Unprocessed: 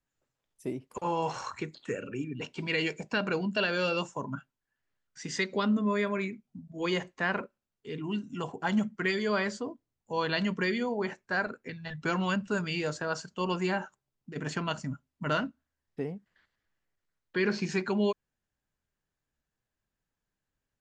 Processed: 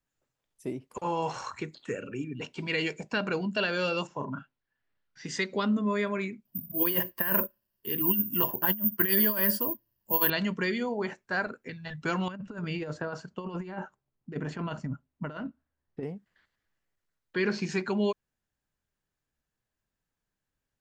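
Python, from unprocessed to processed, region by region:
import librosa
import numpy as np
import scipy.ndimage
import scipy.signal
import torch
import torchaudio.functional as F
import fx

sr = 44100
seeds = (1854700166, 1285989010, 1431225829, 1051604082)

y = fx.chain(x, sr, fx.lowpass(hz=4600.0, slope=24),
    fx.doubler(ms=35.0, db=-5), at=(4.07, 5.26))
y = fx.chain(y, sr, fx.ripple_eq(per_octave=1.3, db=10),
    fx.over_compress(threshold_db=-29.0, ratio=-0.5),
    fx.resample_bad(factor=3, down='filtered', up='zero_stuff'), at=(6.45, 10.3))
y = fx.chain(y, sr, fx.lowpass(hz=1300.0, slope=6),
    fx.over_compress(threshold_db=-34.0, ratio=-0.5), at=(12.28, 16.03))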